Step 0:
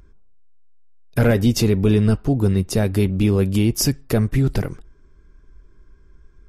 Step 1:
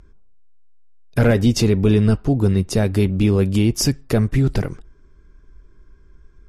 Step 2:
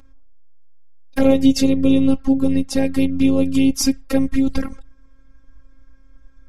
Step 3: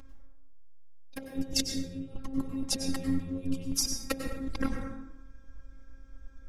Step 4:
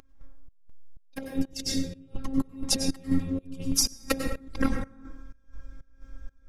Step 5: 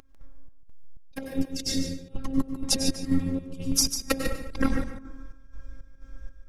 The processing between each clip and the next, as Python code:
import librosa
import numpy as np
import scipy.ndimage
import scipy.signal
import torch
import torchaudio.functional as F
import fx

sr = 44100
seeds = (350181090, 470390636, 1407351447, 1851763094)

y1 = scipy.signal.sosfilt(scipy.signal.butter(2, 9700.0, 'lowpass', fs=sr, output='sos'), x)
y1 = y1 * 10.0 ** (1.0 / 20.0)
y2 = fx.env_flanger(y1, sr, rest_ms=5.7, full_db=-12.0)
y2 = fx.robotise(y2, sr, hz=269.0)
y2 = y2 * 10.0 ** (5.0 / 20.0)
y3 = fx.over_compress(y2, sr, threshold_db=-22.0, ratio=-0.5)
y3 = fx.rev_plate(y3, sr, seeds[0], rt60_s=0.97, hf_ratio=0.5, predelay_ms=85, drr_db=4.5)
y3 = y3 * 10.0 ** (-8.5 / 20.0)
y4 = fx.volume_shaper(y3, sr, bpm=124, per_beat=1, depth_db=-20, release_ms=207.0, shape='slow start')
y4 = y4 * 10.0 ** (5.5 / 20.0)
y5 = y4 + 10.0 ** (-9.0 / 20.0) * np.pad(y4, (int(147 * sr / 1000.0), 0))[:len(y4)]
y5 = y5 * 10.0 ** (1.0 / 20.0)